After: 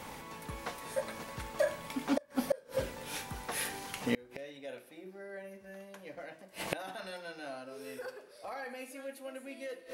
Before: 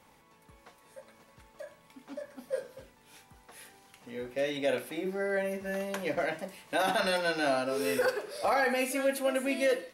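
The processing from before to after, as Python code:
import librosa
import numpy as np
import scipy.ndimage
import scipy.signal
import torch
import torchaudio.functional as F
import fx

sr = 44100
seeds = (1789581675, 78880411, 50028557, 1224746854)

y = fx.rev_schroeder(x, sr, rt60_s=1.4, comb_ms=27, drr_db=17.0)
y = fx.gate_flip(y, sr, shuts_db=-33.0, range_db=-30)
y = y * librosa.db_to_amplitude(15.0)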